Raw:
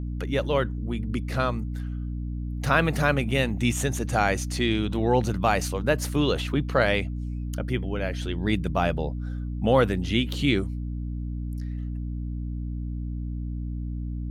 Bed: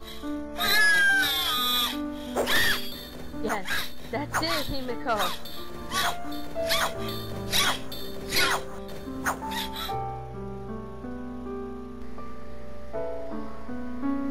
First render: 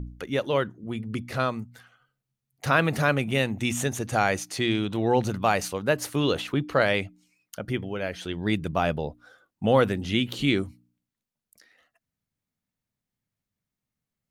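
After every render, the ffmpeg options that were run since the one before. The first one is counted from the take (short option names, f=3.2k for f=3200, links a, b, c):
-af "bandreject=f=60:t=h:w=4,bandreject=f=120:t=h:w=4,bandreject=f=180:t=h:w=4,bandreject=f=240:t=h:w=4,bandreject=f=300:t=h:w=4"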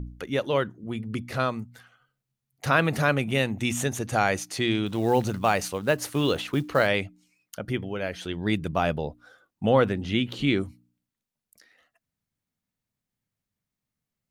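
-filter_complex "[0:a]asettb=1/sr,asplit=3[a][b][c];[a]atrim=end=4.864[d];[b]atrim=start=4.86:end=6.87,asetpts=PTS-STARTPTS,afade=t=in:d=0.004:c=qsin,afade=t=out:st=2.006:d=0.004:c=qsin,acrusher=bits=7:mode=log:mix=0:aa=0.000001[e];[c]atrim=start=6.866[f];[d][e]acrossfade=d=0.004:c1=hsin:c2=qsin[g];[g][f]acrossfade=d=0.004:c1=qsin:c2=hsin,asettb=1/sr,asplit=3[h][i][j];[h]atrim=end=9.694[k];[i]atrim=start=9.69:end=10.61,asetpts=PTS-STARTPTS,afade=t=in:d=0.004:c=qsin,afade=t=out:st=0.916:d=0.004:c=qsin,highshelf=f=6.7k:g=-12[l];[j]atrim=start=10.606[m];[k][l]acrossfade=d=0.004:c1=hsin:c2=qsin[n];[n][m]acrossfade=d=0.004:c1=qsin:c2=hsin"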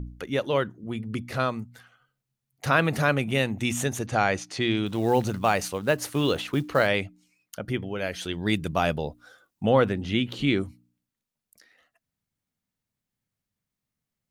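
-filter_complex "[0:a]asettb=1/sr,asplit=3[a][b][c];[a]atrim=end=4.064[d];[b]atrim=start=4.06:end=4.77,asetpts=PTS-STARTPTS,afade=t=in:d=0.004:c=qsin,afade=t=out:st=0.706:d=0.004:c=qsin,lowpass=6.1k[e];[c]atrim=start=4.766[f];[d][e]acrossfade=d=0.004:c1=hsin:c2=qsin[g];[g][f]acrossfade=d=0.004:c1=qsin:c2=hsin,asettb=1/sr,asplit=3[h][i][j];[h]atrim=end=7.984[k];[i]atrim=start=7.98:end=9.63,asetpts=PTS-STARTPTS,afade=t=in:d=0.004:c=qsin,afade=t=out:st=1.646:d=0.004:c=qsin,highshelf=f=3.6k:g=7.5[l];[j]atrim=start=9.626[m];[k][l]acrossfade=d=0.004:c1=hsin:c2=qsin[n];[n][m]acrossfade=d=0.004:c1=qsin:c2=hsin"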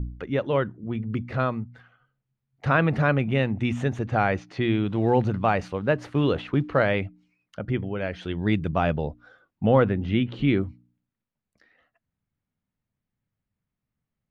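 -af "lowpass=2.4k,lowshelf=f=190:g=6.5"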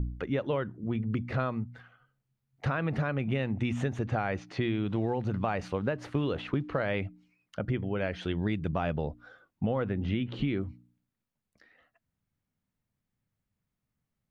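-af "alimiter=limit=-13.5dB:level=0:latency=1:release=240,acompressor=threshold=-26dB:ratio=6"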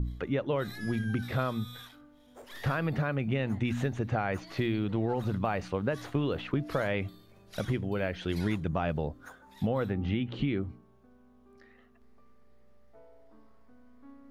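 -filter_complex "[1:a]volume=-24dB[a];[0:a][a]amix=inputs=2:normalize=0"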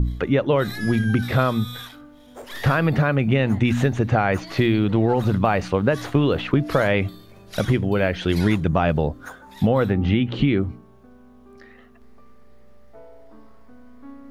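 -af "volume=11dB"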